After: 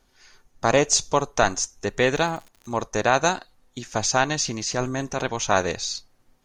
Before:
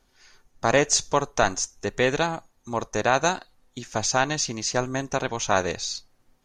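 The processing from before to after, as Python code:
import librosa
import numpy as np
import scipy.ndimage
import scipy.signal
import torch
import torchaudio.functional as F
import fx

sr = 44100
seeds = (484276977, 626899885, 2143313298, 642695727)

y = fx.peak_eq(x, sr, hz=1700.0, db=-7.0, octaves=0.43, at=(0.72, 1.3))
y = fx.dmg_crackle(y, sr, seeds[0], per_s=fx.line((2.14, 130.0), (2.73, 46.0)), level_db=-37.0, at=(2.14, 2.73), fade=0.02)
y = fx.transient(y, sr, attack_db=-6, sustain_db=3, at=(4.42, 5.22))
y = y * 10.0 ** (1.5 / 20.0)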